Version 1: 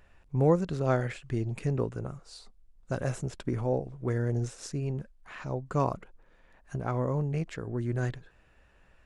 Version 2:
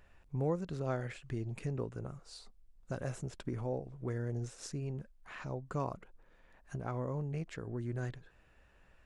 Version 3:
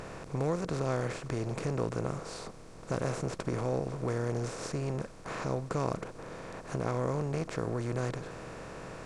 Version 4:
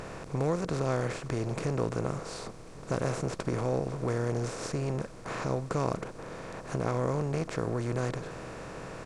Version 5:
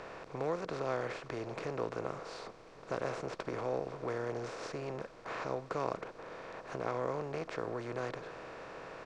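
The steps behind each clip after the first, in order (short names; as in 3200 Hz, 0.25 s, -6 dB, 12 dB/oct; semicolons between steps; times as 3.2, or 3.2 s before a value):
compressor 1.5:1, threshold -39 dBFS, peak gain reduction 7.5 dB; gain -3 dB
per-bin compression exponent 0.4
echo 1.094 s -23 dB; gain +2 dB
three-band isolator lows -12 dB, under 340 Hz, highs -20 dB, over 5300 Hz; gain -3 dB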